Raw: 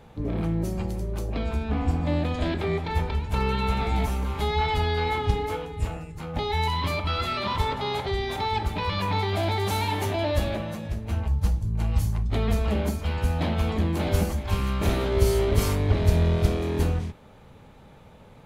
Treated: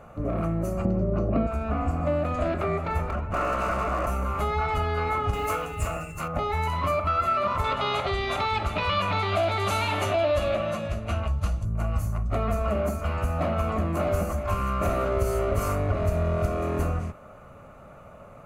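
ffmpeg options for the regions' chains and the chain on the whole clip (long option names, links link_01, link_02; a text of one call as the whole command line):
ffmpeg -i in.wav -filter_complex "[0:a]asettb=1/sr,asplit=3[link_01][link_02][link_03];[link_01]atrim=end=0.854[link_04];[link_02]atrim=start=0.85:end=1.47,asetpts=PTS-STARTPTS,afade=type=in:duration=0.004:curve=qsin,afade=type=out:start_time=0.616:duration=0.004:curve=qsin,lowpass=frequency=4700:width=0.5412,lowpass=frequency=4700:width=1.3066,equalizer=frequency=210:width=0.46:gain=14.5,bandreject=frequency=3400:width=16[link_05];[link_03]atrim=start=1.466[link_06];[link_04][link_05]acrossfade=duration=0.004:curve1=hsin:curve2=qsin[link_07];[link_07][link_06]acrossfade=duration=0.004:curve1=qsin:curve2=hsin,asettb=1/sr,asplit=3[link_08][link_09][link_10];[link_08]atrim=end=3.104[link_11];[link_09]atrim=start=3.1:end=4.07,asetpts=PTS-STARTPTS,afade=type=in:duration=0.004:curve=qsin,afade=type=out:start_time=0.966:duration=0.004:curve=qsin,adynamicsmooth=sensitivity=4:basefreq=2000,aeval=exprs='0.0631*(abs(mod(val(0)/0.0631+3,4)-2)-1)':channel_layout=same[link_12];[link_10]atrim=start=4.066[link_13];[link_11][link_12]acrossfade=duration=0.004:curve1=hsin:curve2=qsin[link_14];[link_14][link_13]acrossfade=duration=0.004:curve1=qsin:curve2=hsin,asettb=1/sr,asplit=3[link_15][link_16][link_17];[link_15]atrim=end=5.334[link_18];[link_16]atrim=start=5.33:end=6.28,asetpts=PTS-STARTPTS,afade=type=in:duration=0.004:curve=qsin,afade=type=out:start_time=0.946:duration=0.004:curve=qsin,aeval=exprs='val(0)+0.002*sin(2*PI*2700*n/s)':channel_layout=same,highshelf=frequency=2200:gain=11.5,acrusher=bits=7:mode=log:mix=0:aa=0.000001[link_19];[link_17]atrim=start=6.276[link_20];[link_18][link_19]acrossfade=duration=0.004:curve1=hsin:curve2=qsin[link_21];[link_21][link_20]acrossfade=duration=0.004:curve1=qsin:curve2=hsin,asettb=1/sr,asplit=3[link_22][link_23][link_24];[link_22]atrim=end=7.644[link_25];[link_23]atrim=start=7.64:end=11.65,asetpts=PTS-STARTPTS,afade=type=in:duration=0.004:curve=qsin,afade=type=out:start_time=4.006:duration=0.004:curve=qsin,lowpass=frequency=12000:width=0.5412,lowpass=frequency=12000:width=1.3066,equalizer=frequency=3500:width_type=o:width=1.1:gain=13.5[link_26];[link_24]atrim=start=11.646[link_27];[link_25][link_26]acrossfade=duration=0.004:curve1=hsin:curve2=qsin[link_28];[link_28][link_27]acrossfade=duration=0.004:curve1=qsin:curve2=hsin,superequalizer=8b=3.16:10b=3.55:13b=0.282:14b=0.447,acompressor=threshold=-23dB:ratio=2.5" out.wav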